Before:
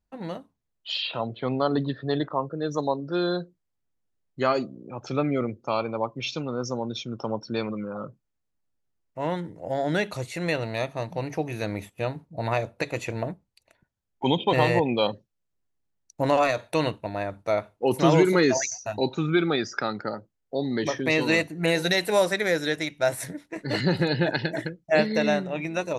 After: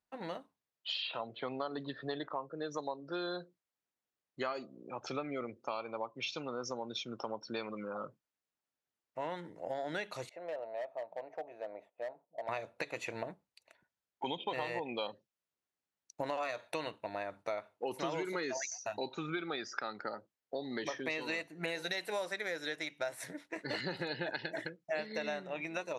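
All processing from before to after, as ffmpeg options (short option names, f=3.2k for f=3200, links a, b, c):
-filter_complex "[0:a]asettb=1/sr,asplit=3[a][b][c];[a]atrim=end=10.294[d];[b]atrim=start=10.29:end=12.49,asetpts=PTS-STARTPTS,afade=t=in:d=0.004:c=qsin,afade=t=out:st=2.196:d=0.004:c=qsin,bandpass=f=630:t=q:w=3.9,asoftclip=type=hard:threshold=-28.5dB[e];[c]atrim=start=12.486[f];[d][e]acrossfade=d=0.004:c1=hsin:c2=qsin[g];[g][f]acrossfade=d=0.004:c1=qsin:c2=hsin,highpass=f=690:p=1,highshelf=f=6.8k:g=-8.5,acompressor=threshold=-36dB:ratio=4"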